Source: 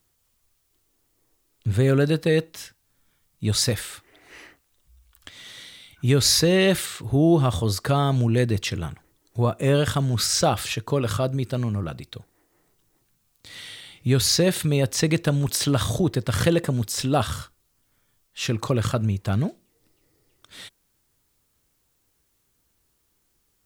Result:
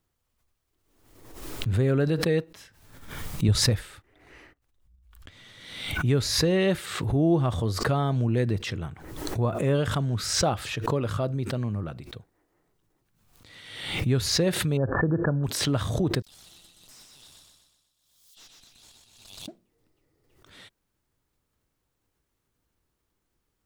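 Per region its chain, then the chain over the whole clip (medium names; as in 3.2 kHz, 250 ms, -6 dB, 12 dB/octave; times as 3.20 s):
3.48–5.65 s: gate -53 dBFS, range -17 dB + bass shelf 120 Hz +11.5 dB
14.77–15.44 s: brick-wall FIR low-pass 1.8 kHz + upward compressor, threshold -31 dBFS
16.22–19.48 s: inverse Chebyshev high-pass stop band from 1.5 kHz, stop band 50 dB + valve stage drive 38 dB, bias 0.5 + feedback delay 124 ms, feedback 53%, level -3 dB
whole clip: treble shelf 3.4 kHz -10.5 dB; swell ahead of each attack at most 56 dB/s; trim -4 dB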